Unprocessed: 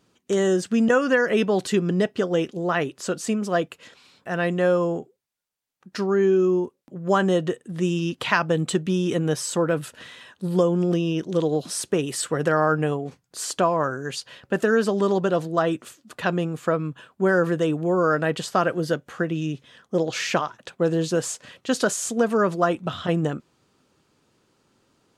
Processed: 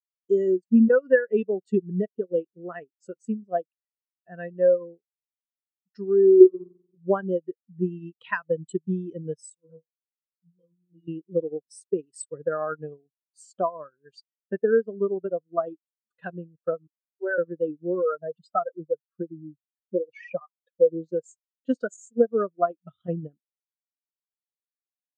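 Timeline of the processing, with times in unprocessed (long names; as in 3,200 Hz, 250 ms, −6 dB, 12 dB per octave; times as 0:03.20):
0:06.36–0:06.98: flutter between parallel walls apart 7.8 metres, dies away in 1.5 s
0:09.55–0:11.08: stiff-string resonator 160 Hz, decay 0.39 s, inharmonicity 0.002
0:16.87–0:17.38: high-pass filter 430 Hz 24 dB per octave
0:18.02–0:21.02: expanding power law on the bin magnitudes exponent 2.1
whole clip: high-shelf EQ 2,200 Hz +7.5 dB; transient designer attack +4 dB, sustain −11 dB; every bin expanded away from the loudest bin 2.5 to 1; level −5 dB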